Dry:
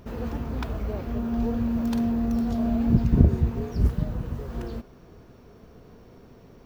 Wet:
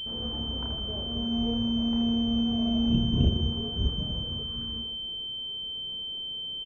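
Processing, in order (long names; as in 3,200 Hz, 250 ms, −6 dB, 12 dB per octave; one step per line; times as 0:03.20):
reverse bouncing-ball delay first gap 30 ms, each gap 1.6×, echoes 5
healed spectral selection 0:04.45–0:04.82, 330–950 Hz after
switching amplifier with a slow clock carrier 3,100 Hz
level −7.5 dB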